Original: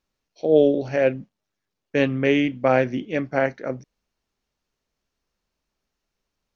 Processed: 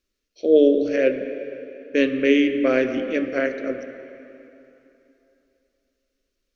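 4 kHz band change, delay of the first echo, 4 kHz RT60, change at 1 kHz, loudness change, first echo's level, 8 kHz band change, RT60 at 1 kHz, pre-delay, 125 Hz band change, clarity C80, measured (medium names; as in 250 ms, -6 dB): +2.0 dB, no echo, 2.8 s, -8.5 dB, +1.0 dB, no echo, no reading, 3.0 s, 9 ms, -14.5 dB, 9.0 dB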